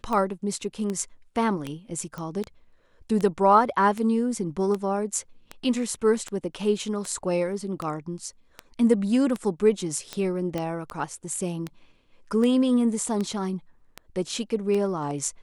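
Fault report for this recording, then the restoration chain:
scratch tick 78 rpm −17 dBFS
0:02.18: click −22 dBFS
0:10.58: click −16 dBFS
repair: click removal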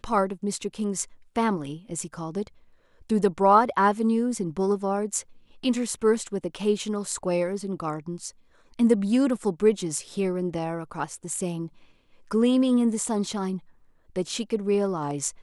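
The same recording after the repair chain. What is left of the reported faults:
none of them is left

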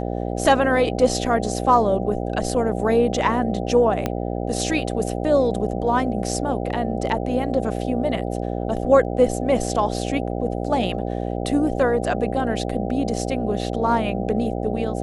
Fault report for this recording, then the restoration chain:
mains buzz 60 Hz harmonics 13 −26 dBFS
0:04.06: click −9 dBFS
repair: click removal
hum removal 60 Hz, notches 13

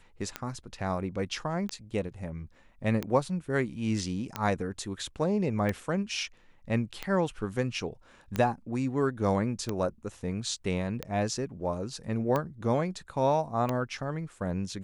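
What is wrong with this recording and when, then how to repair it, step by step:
scratch tick 45 rpm −16 dBFS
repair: click removal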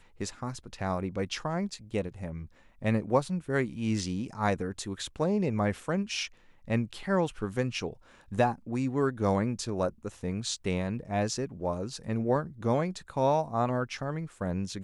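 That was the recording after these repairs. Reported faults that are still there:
none of them is left

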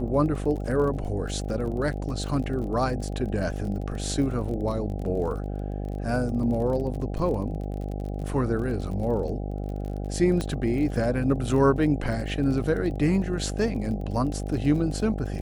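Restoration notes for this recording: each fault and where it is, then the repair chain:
mains buzz 50 Hz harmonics 16 −31 dBFS
surface crackle 32 per second −34 dBFS
0:10.41: click −16 dBFS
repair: click removal
hum removal 50 Hz, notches 16

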